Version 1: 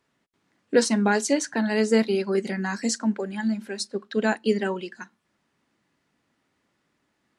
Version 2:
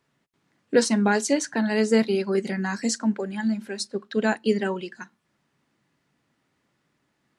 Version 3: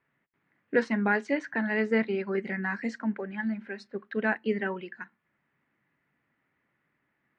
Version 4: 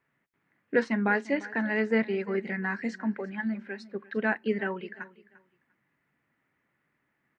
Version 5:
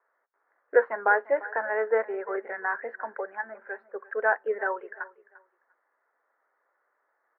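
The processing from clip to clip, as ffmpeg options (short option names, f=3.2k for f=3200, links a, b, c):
-af "equalizer=f=140:w=3.5:g=7"
-af "lowpass=f=2k:t=q:w=2.5,volume=-6.5dB"
-af "aecho=1:1:347|694:0.106|0.0233"
-af "asuperpass=centerf=850:order=8:qfactor=0.75,volume=7dB"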